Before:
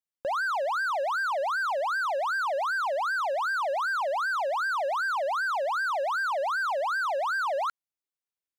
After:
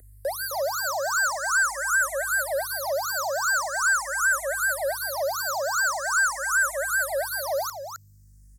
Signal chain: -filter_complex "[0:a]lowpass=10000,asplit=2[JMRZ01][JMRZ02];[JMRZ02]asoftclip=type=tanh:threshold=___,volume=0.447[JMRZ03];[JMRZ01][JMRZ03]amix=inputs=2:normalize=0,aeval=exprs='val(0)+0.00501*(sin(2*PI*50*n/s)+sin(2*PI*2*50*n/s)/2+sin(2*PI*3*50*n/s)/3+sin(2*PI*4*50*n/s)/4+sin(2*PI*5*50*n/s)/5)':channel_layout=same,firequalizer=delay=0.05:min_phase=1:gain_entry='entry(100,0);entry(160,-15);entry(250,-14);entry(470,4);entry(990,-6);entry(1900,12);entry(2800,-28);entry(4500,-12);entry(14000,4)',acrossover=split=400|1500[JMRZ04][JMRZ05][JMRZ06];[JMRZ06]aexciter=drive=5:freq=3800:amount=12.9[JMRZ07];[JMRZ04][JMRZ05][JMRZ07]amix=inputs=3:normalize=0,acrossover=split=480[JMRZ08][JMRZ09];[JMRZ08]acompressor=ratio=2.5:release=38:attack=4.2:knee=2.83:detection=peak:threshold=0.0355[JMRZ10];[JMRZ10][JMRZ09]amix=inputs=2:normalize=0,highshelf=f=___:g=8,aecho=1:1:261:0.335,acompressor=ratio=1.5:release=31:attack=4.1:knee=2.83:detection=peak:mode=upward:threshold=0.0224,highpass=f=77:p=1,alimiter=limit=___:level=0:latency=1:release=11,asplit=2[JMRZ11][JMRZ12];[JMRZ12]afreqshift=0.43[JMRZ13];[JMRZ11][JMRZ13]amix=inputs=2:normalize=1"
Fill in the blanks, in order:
0.0126, 2400, 0.211